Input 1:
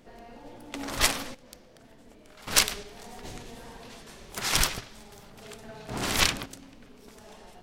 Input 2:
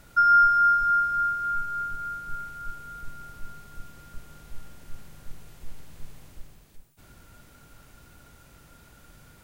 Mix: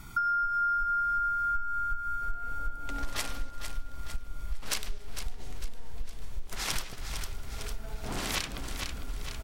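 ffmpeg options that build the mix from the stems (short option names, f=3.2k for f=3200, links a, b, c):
-filter_complex "[0:a]adelay=2150,volume=-0.5dB,asplit=2[a][b];[b]volume=-12dB[c];[1:a]aecho=1:1:0.9:0.89,asubboost=boost=7.5:cutoff=62,acompressor=threshold=-17dB:ratio=6,volume=2dB,asplit=2[d][e];[e]volume=-12dB[f];[c][f]amix=inputs=2:normalize=0,aecho=0:1:453|906|1359|1812|2265|2718|3171:1|0.51|0.26|0.133|0.0677|0.0345|0.0176[g];[a][d][g]amix=inputs=3:normalize=0,acompressor=threshold=-31dB:ratio=3"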